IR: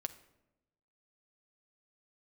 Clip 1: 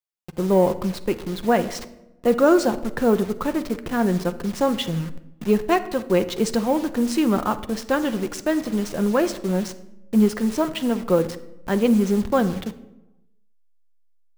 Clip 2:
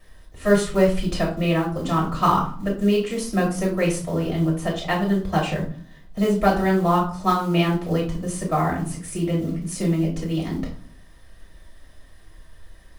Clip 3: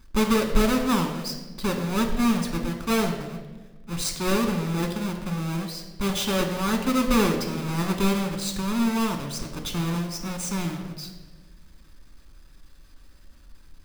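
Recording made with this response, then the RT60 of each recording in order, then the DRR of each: 1; 0.95, 0.45, 1.2 s; 9.0, -4.0, 3.0 dB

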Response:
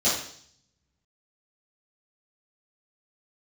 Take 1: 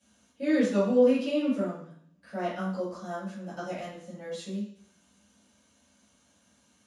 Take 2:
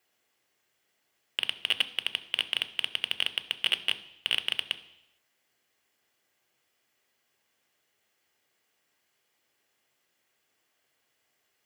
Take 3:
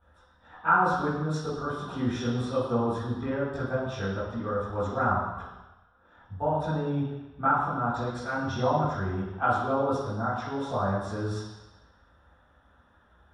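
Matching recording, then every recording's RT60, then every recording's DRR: 1; 0.60 s, not exponential, 1.1 s; -12.5, 10.0, -14.0 dB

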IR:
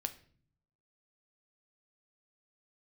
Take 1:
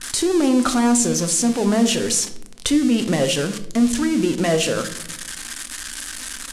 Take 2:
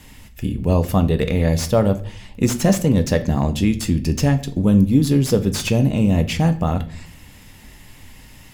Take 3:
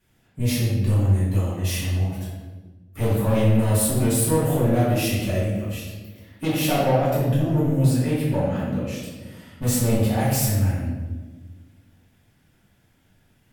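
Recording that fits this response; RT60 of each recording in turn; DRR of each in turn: 2; 0.85, 0.50, 1.3 s; 8.0, 8.0, -11.0 dB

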